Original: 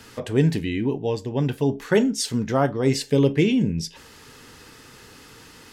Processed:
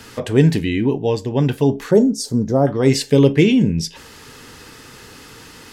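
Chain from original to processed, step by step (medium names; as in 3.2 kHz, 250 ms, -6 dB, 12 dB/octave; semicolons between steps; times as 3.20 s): 1.91–2.67 s: FFT filter 580 Hz 0 dB, 2.8 kHz -26 dB, 4.6 kHz -6 dB; trim +6 dB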